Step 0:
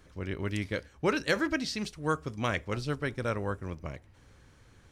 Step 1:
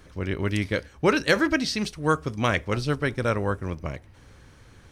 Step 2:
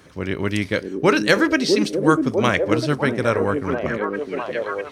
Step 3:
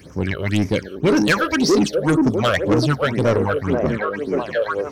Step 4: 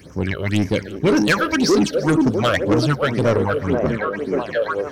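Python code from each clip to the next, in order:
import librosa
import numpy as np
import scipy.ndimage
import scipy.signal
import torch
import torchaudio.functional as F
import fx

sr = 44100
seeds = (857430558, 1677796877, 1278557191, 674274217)

y1 = fx.notch(x, sr, hz=7200.0, q=13.0)
y1 = y1 * librosa.db_to_amplitude(7.0)
y2 = scipy.signal.sosfilt(scipy.signal.butter(2, 120.0, 'highpass', fs=sr, output='sos'), y1)
y2 = fx.echo_stepped(y2, sr, ms=650, hz=310.0, octaves=0.7, feedback_pct=70, wet_db=0)
y2 = y2 * librosa.db_to_amplitude(4.5)
y3 = fx.phaser_stages(y2, sr, stages=8, low_hz=250.0, high_hz=3500.0, hz=1.9, feedback_pct=50)
y3 = 10.0 ** (-17.0 / 20.0) * np.tanh(y3 / 10.0 ** (-17.0 / 20.0))
y3 = y3 * librosa.db_to_amplitude(6.0)
y4 = fx.echo_feedback(y3, sr, ms=345, feedback_pct=30, wet_db=-18.5)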